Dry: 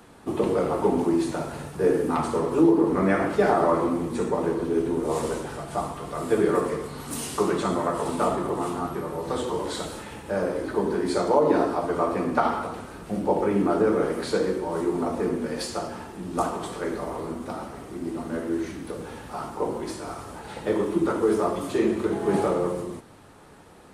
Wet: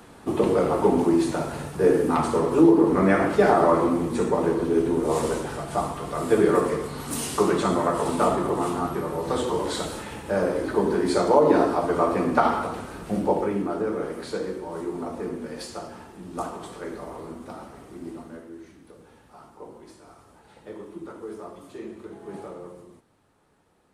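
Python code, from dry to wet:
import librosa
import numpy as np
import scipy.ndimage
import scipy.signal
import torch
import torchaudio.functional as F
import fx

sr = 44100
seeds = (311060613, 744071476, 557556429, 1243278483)

y = fx.gain(x, sr, db=fx.line((13.2, 2.5), (13.68, -5.5), (18.11, -5.5), (18.52, -15.0)))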